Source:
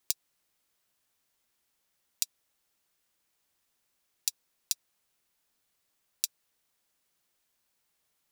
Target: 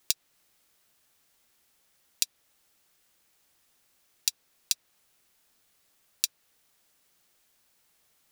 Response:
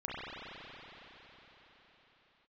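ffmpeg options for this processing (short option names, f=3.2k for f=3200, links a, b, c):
-filter_complex "[0:a]bandreject=f=1k:w=23,acrossover=split=850|4700[a][b][c];[c]alimiter=limit=-11dB:level=0:latency=1:release=285[d];[a][b][d]amix=inputs=3:normalize=0,volume=8.5dB"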